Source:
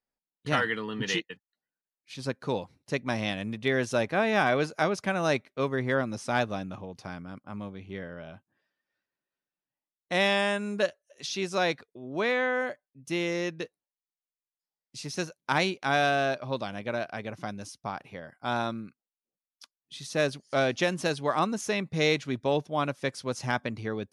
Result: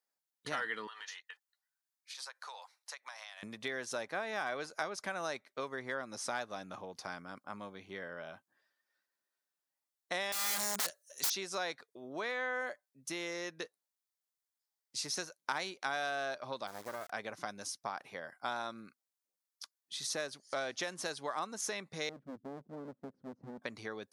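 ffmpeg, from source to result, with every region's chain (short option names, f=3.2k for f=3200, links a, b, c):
-filter_complex "[0:a]asettb=1/sr,asplit=3[a][b][c];[a]atrim=end=0.874[d];[b]atrim=start=0.87:end=3.43,asetpts=PTS-STARTPTS,afade=t=in:d=0.004:c=qsin,afade=t=out:st=2.556:d=0.004:c=qsin,highpass=f=770:w=0.5412,highpass=f=770:w=1.3066,acompressor=threshold=-43dB:ratio=16:attack=3.2:release=140:knee=1:detection=peak[e];[c]atrim=start=3.426[f];[d][e]acrossfade=d=0.004:c1=hsin:c2=qsin[g];[g][f]acrossfade=d=0.004:c1=qsin:c2=hsin,asettb=1/sr,asplit=3[h][i][j];[h]atrim=end=10.324[k];[i]atrim=start=10.32:end=11.3,asetpts=PTS-STARTPTS,afade=t=in:d=0.004:c=qsin,afade=t=out:st=0.976:d=0.004:c=qsin,bass=f=250:g=7,treble=f=4k:g=13,aeval=exprs='(mod(17.8*val(0)+1,2)-1)/17.8':c=same[l];[j]atrim=start=11.296[m];[k][l]acrossfade=d=0.004:c1=hsin:c2=qsin[n];[n][m]acrossfade=d=0.004:c1=qsin:c2=hsin,asettb=1/sr,asplit=3[o][p][q];[o]atrim=end=16.674[r];[p]atrim=start=16.67:end=17.1,asetpts=PTS-STARTPTS,afade=t=in:d=0.004:c=qsin,afade=t=out:st=0.426:d=0.004:c=qsin,lowpass=f=1.4k:w=0.5412,lowpass=f=1.4k:w=1.3066,acrusher=bits=5:dc=4:mix=0:aa=0.000001[s];[q]atrim=start=17.096[t];[r][s]acrossfade=d=0.004:c1=hsin:c2=qsin[u];[u][t]acrossfade=d=0.004:c1=qsin:c2=hsin,asettb=1/sr,asplit=3[v][w][x];[v]atrim=end=22.094[y];[w]atrim=start=22.09:end=23.62,asetpts=PTS-STARTPTS,afade=t=in:d=0.004:c=qsin,afade=t=out:st=1.526:d=0.004:c=qsin,lowpass=f=240:t=q:w=2,aeval=exprs='clip(val(0),-1,0.0133)':c=same[z];[x]atrim=start=23.616[aa];[y][z]acrossfade=d=0.004:c1=hsin:c2=qsin[ab];[ab][aa]acrossfade=d=0.004:c1=qsin:c2=hsin,equalizer=f=2.7k:w=2.1:g=-7.5,acompressor=threshold=-34dB:ratio=6,highpass=f=1.1k:p=1,volume=4.5dB"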